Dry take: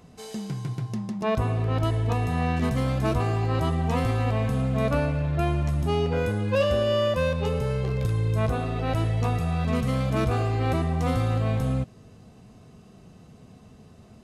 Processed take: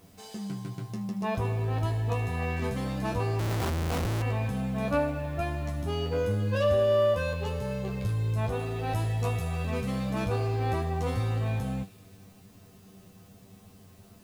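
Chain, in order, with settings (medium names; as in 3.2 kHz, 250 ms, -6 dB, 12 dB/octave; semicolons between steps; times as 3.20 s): 8.59–9.66 s: treble shelf 8 kHz +10.5 dB; word length cut 10-bit, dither triangular; feedback comb 97 Hz, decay 0.15 s, harmonics all, mix 100%; feedback echo behind a high-pass 77 ms, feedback 82%, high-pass 2.5 kHz, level -15.5 dB; 3.39–4.22 s: Schmitt trigger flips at -35 dBFS; trim +2.5 dB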